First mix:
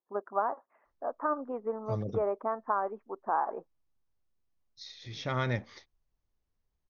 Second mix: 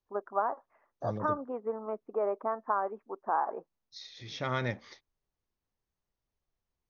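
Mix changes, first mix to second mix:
second voice: entry -0.85 s; master: add bass shelf 83 Hz -11.5 dB

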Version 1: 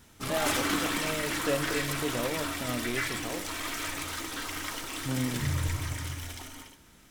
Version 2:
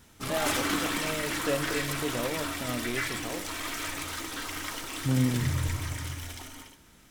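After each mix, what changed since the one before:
second voice: add tilt EQ -2.5 dB/octave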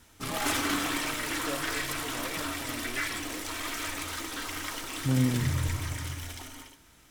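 first voice -9.5 dB

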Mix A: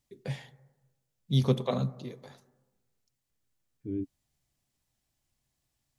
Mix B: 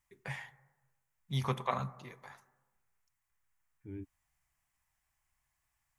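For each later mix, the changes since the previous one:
master: add graphic EQ 125/250/500/1000/2000/4000 Hz -6/-11/-10/+8/+7/-10 dB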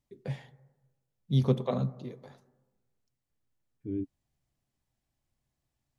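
first voice: add treble shelf 2.2 kHz -9 dB; master: add graphic EQ 125/250/500/1000/2000/4000 Hz +6/+11/+10/-8/-7/+10 dB

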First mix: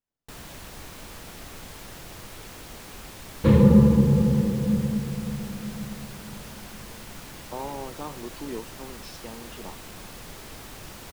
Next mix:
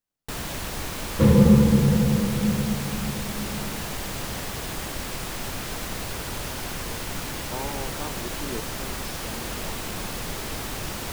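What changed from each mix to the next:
first sound +10.0 dB; second sound: entry -2.25 s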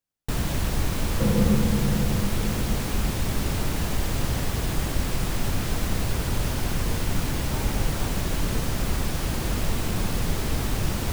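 speech -5.5 dB; first sound: add bass shelf 270 Hz +11.5 dB; second sound -7.0 dB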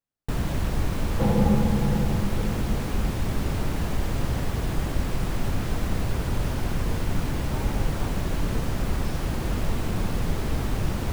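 first sound: add treble shelf 2.7 kHz -8.5 dB; second sound: remove Butterworth band-stop 740 Hz, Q 1.9

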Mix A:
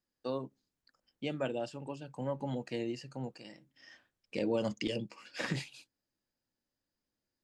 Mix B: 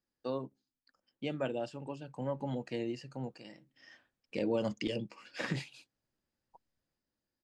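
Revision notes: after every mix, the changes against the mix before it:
second voice: entry +1.10 s; master: add treble shelf 5.2 kHz -6 dB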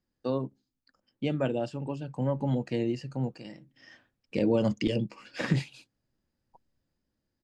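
first voice +3.5 dB; master: add bass shelf 270 Hz +9.5 dB

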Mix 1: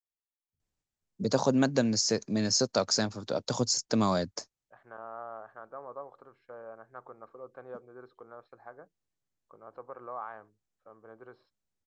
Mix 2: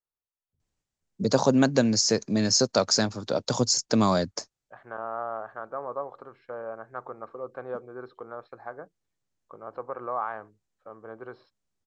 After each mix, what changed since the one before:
first voice +4.5 dB; second voice +9.0 dB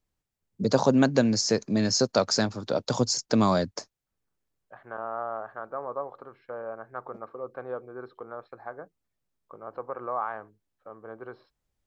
first voice: entry -0.60 s; master: remove resonant low-pass 7.4 kHz, resonance Q 1.6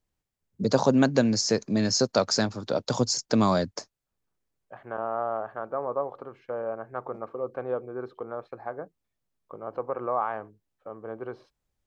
second voice: remove rippled Chebyshev low-pass 5.5 kHz, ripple 6 dB

